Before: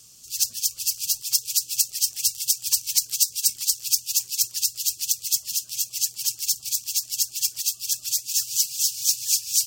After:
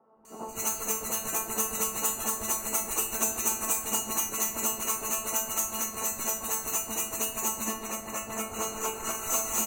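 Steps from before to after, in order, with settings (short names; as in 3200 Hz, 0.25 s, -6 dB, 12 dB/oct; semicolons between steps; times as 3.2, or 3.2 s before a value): four-band scrambler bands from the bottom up 4321; 7.43–8.9 high shelf 4600 Hz -9.5 dB; resonator 220 Hz, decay 0.35 s, harmonics all, mix 90%; in parallel at -5 dB: wavefolder -35.5 dBFS; on the sum: three bands offset in time mids, lows, highs 0.16/0.25 s, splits 160/1000 Hz; on a send at -6 dB: reverb RT60 2.2 s, pre-delay 4 ms; on the sum: gain +5.5 dB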